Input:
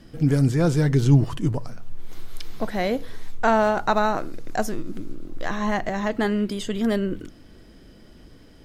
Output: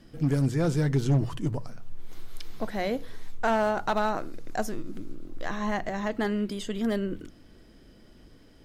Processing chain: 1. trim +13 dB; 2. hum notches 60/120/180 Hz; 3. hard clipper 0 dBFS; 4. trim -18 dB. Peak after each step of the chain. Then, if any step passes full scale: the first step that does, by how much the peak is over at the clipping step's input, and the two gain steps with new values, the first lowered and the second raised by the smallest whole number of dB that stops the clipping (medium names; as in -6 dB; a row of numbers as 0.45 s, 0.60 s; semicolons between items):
+6.5 dBFS, +6.5 dBFS, 0.0 dBFS, -18.0 dBFS; step 1, 6.5 dB; step 1 +6 dB, step 4 -11 dB